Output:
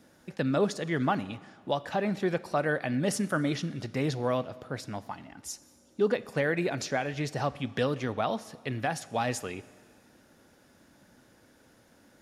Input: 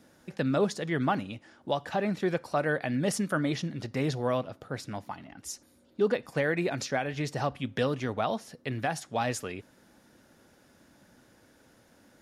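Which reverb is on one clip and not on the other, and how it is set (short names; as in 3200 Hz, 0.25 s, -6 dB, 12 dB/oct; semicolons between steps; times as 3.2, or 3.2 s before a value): Schroeder reverb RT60 1.8 s, combs from 28 ms, DRR 18 dB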